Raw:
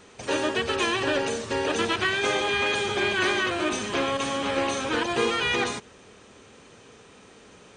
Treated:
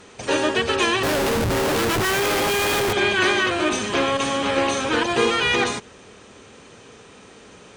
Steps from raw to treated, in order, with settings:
0:01.03–0:02.93: comparator with hysteresis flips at −30.5 dBFS
harmonic generator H 6 −35 dB, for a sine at −13 dBFS
level +5 dB

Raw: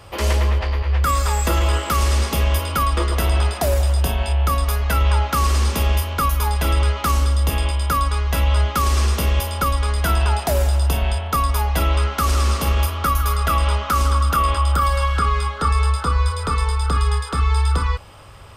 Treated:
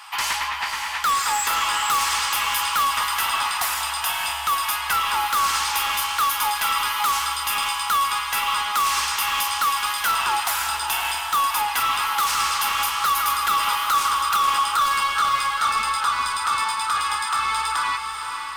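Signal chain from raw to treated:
elliptic high-pass filter 850 Hz, stop band 40 dB
soft clipping −24.5 dBFS, distortion −10 dB
on a send: feedback delay with all-pass diffusion 532 ms, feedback 45%, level −6.5 dB
on the sum: level +7 dB

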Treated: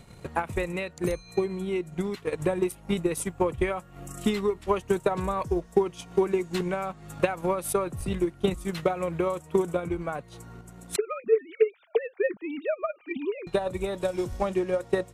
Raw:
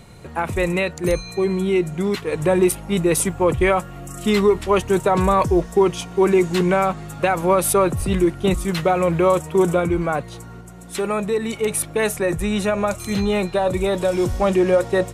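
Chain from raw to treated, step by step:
0:10.96–0:13.47: three sine waves on the formant tracks
downward compressor 1.5 to 1, threshold −30 dBFS, peak gain reduction 7.5 dB
transient designer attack +10 dB, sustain −5 dB
level −7 dB

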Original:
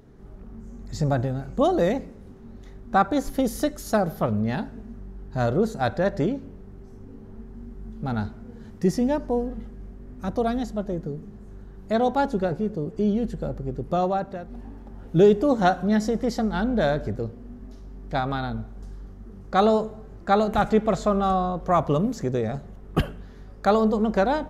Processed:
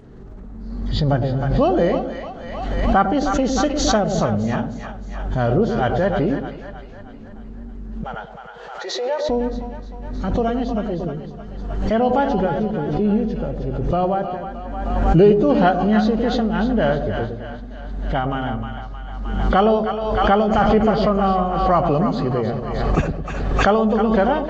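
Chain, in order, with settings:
hearing-aid frequency compression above 2,000 Hz 1.5 to 1
0:08.04–0:09.29: Chebyshev high-pass filter 490 Hz, order 4
echo with a time of its own for lows and highs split 660 Hz, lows 107 ms, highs 310 ms, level −7 dB
background raised ahead of every attack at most 36 dB per second
level +3 dB

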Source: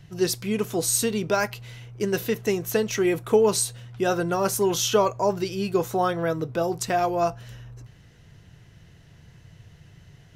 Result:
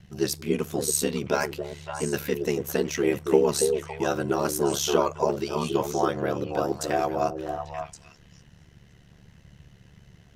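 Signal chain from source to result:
echo through a band-pass that steps 280 ms, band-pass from 360 Hz, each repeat 1.4 octaves, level −2 dB
ring modulation 36 Hz

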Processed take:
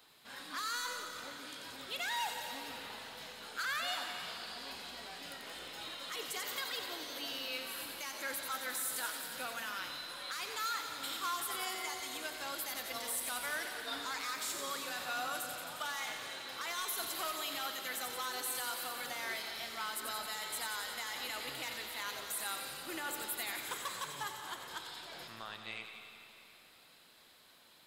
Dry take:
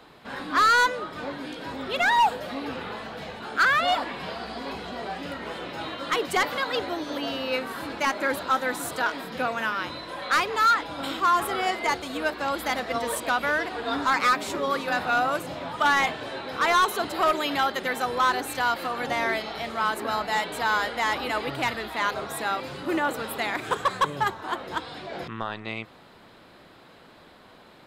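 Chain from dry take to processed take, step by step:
first-order pre-emphasis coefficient 0.9
hum removal 97.46 Hz, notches 31
brickwall limiter −28.5 dBFS, peak gain reduction 11.5 dB
delay with a high-pass on its return 89 ms, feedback 75%, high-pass 3,500 Hz, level −5 dB
on a send at −6 dB: convolution reverb RT60 3.0 s, pre-delay 104 ms

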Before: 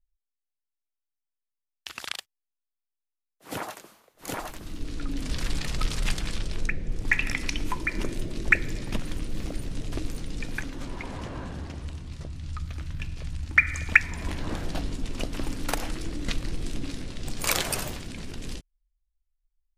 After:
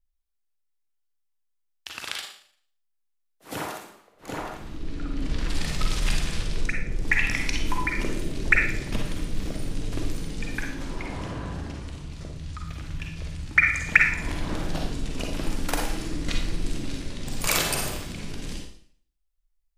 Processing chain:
0:03.78–0:05.49: low-pass filter 2,400 Hz 6 dB per octave
four-comb reverb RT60 0.56 s, DRR 1 dB

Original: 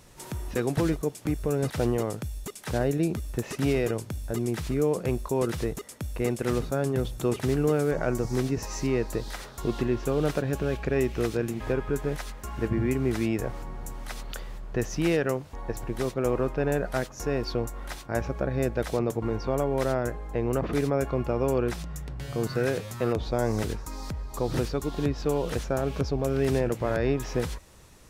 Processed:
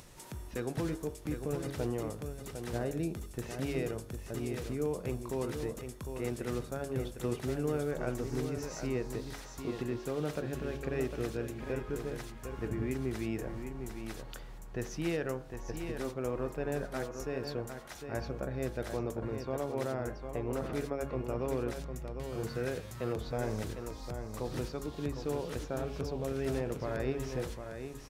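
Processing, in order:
hum removal 46.28 Hz, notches 38
upward compression, threshold −38 dBFS
single-tap delay 754 ms −7.5 dB
level −8.5 dB

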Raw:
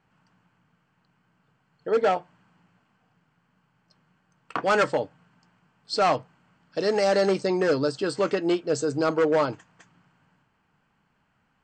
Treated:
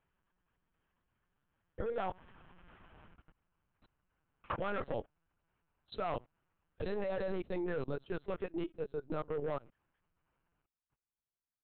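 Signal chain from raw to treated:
source passing by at 0:02.85, 13 m/s, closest 6.6 metres
output level in coarse steps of 23 dB
linear-prediction vocoder at 8 kHz pitch kept
level +10.5 dB

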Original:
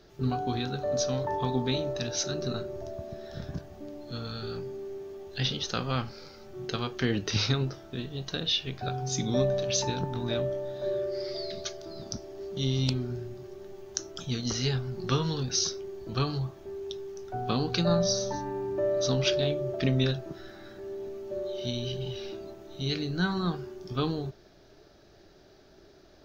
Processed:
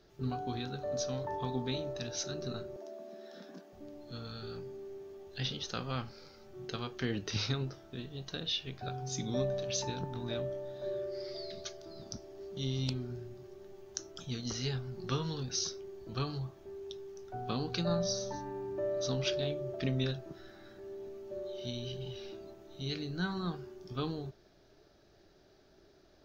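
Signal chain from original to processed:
0:02.76–0:03.73: Butterworth high-pass 190 Hz 72 dB per octave
level −7 dB

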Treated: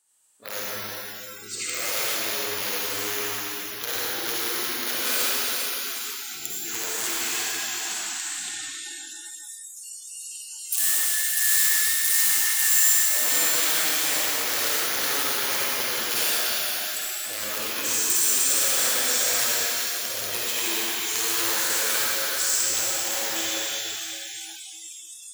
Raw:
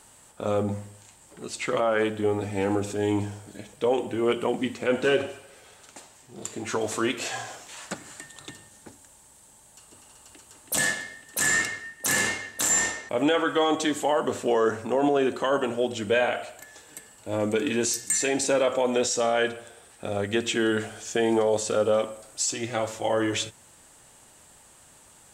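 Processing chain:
wrap-around overflow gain 16.5 dB
echo through a band-pass that steps 135 ms, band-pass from 1,600 Hz, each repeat 1.4 octaves, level −7 dB
downward compressor 2 to 1, threshold −49 dBFS, peak gain reduction 15.5 dB
convolution reverb RT60 4.8 s, pre-delay 46 ms, DRR −9 dB
noise reduction from a noise print of the clip's start 27 dB
spectral tilt +4 dB per octave

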